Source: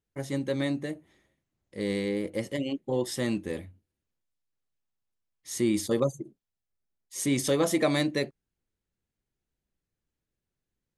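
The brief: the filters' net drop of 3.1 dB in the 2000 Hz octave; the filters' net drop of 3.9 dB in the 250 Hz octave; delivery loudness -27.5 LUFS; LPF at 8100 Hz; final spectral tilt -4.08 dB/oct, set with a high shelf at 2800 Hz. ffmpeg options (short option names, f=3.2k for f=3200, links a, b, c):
-af "lowpass=8.1k,equalizer=f=250:t=o:g=-5,equalizer=f=2k:t=o:g=-5.5,highshelf=f=2.8k:g=5.5,volume=3.5dB"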